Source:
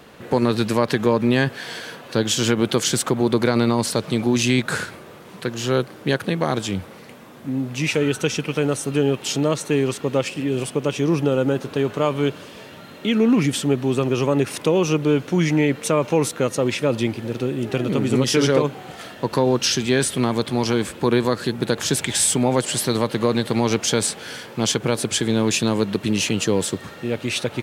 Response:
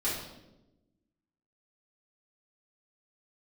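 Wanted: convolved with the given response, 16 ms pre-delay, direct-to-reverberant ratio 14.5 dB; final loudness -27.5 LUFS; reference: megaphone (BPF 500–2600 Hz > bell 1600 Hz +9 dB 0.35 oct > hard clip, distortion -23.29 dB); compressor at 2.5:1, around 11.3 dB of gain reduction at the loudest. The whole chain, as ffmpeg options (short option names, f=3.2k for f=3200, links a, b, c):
-filter_complex "[0:a]acompressor=threshold=-31dB:ratio=2.5,asplit=2[a][b];[1:a]atrim=start_sample=2205,adelay=16[c];[b][c]afir=irnorm=-1:irlink=0,volume=-21.5dB[d];[a][d]amix=inputs=2:normalize=0,highpass=500,lowpass=2.6k,equalizer=f=1.6k:t=o:w=0.35:g=9,asoftclip=type=hard:threshold=-23.5dB,volume=8dB"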